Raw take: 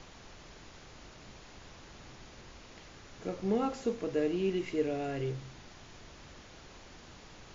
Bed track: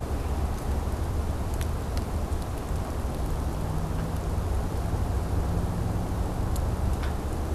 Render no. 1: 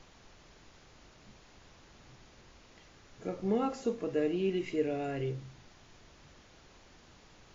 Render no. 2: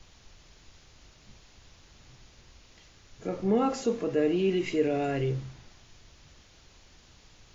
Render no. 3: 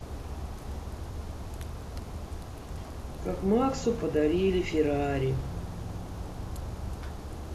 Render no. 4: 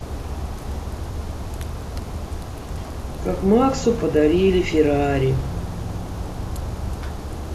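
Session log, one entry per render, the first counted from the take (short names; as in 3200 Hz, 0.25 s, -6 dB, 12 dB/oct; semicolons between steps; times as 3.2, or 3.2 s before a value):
noise print and reduce 6 dB
in parallel at +2 dB: limiter -30.5 dBFS, peak gain reduction 11 dB; on the sum: three-band expander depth 40%
add bed track -9.5 dB
gain +9 dB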